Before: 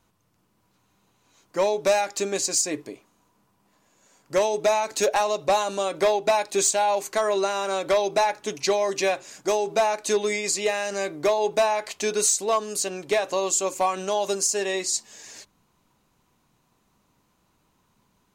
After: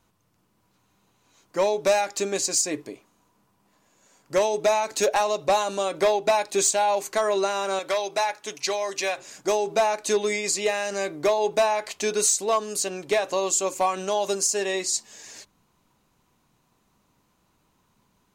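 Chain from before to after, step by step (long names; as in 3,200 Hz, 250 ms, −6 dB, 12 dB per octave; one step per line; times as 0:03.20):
0:07.79–0:09.18: low-shelf EQ 470 Hz −12 dB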